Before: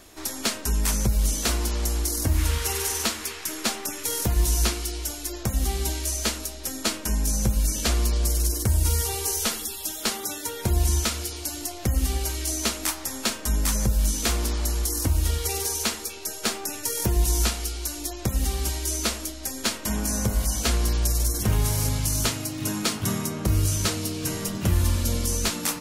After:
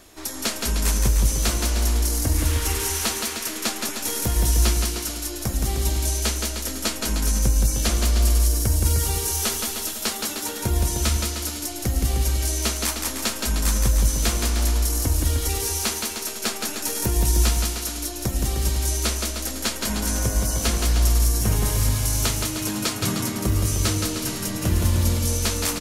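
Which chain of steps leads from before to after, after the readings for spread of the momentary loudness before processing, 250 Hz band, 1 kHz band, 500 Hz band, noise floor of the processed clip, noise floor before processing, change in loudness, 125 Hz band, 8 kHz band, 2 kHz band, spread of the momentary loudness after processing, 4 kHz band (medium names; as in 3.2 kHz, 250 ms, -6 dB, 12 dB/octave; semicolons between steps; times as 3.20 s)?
6 LU, +2.0 dB, +2.0 dB, +2.0 dB, -32 dBFS, -37 dBFS, +2.5 dB, +3.0 dB, +2.0 dB, +2.0 dB, 6 LU, +2.0 dB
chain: bouncing-ball echo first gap 170 ms, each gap 0.8×, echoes 5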